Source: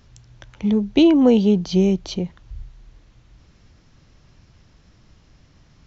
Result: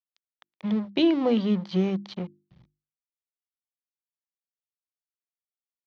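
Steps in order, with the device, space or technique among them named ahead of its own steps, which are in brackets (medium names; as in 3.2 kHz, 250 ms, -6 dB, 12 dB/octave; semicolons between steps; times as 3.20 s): blown loudspeaker (crossover distortion -32.5 dBFS; cabinet simulation 170–4300 Hz, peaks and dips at 270 Hz -8 dB, 430 Hz -9 dB, 670 Hz -4 dB, 1.5 kHz -6 dB, 2.7 kHz -4 dB); hum notches 50/100/150/200/250/300/350 Hz; trim -1.5 dB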